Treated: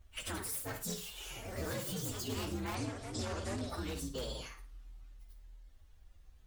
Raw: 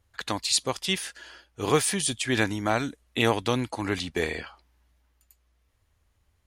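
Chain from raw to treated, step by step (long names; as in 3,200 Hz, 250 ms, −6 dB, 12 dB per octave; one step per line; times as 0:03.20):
partials spread apart or drawn together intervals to 129%
in parallel at −4.5 dB: wrap-around overflow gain 22 dB
on the sum: low-shelf EQ 66 Hz +11 dB
on a send: flutter between parallel walls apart 9.3 metres, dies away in 0.29 s
on the sum: downward compressor 2.5 to 1, threshold −43 dBFS, peak gain reduction 16 dB
brickwall limiter −33 dBFS, peak gain reduction 7 dB
delay with pitch and tempo change per echo 123 ms, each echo +3 semitones, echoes 3, each echo −6 dB
0:02.75–0:03.70: low-pass filter 9,800 Hz 24 dB per octave
level +2 dB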